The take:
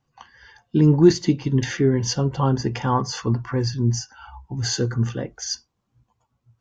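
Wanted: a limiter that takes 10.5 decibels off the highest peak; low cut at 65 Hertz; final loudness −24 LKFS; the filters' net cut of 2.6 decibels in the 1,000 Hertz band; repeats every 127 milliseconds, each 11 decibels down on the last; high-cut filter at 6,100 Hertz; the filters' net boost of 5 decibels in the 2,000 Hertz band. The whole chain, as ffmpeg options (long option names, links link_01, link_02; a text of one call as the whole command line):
ffmpeg -i in.wav -af "highpass=65,lowpass=6100,equalizer=frequency=1000:width_type=o:gain=-5,equalizer=frequency=2000:width_type=o:gain=8,alimiter=limit=-13.5dB:level=0:latency=1,aecho=1:1:127|254|381:0.282|0.0789|0.0221,volume=1dB" out.wav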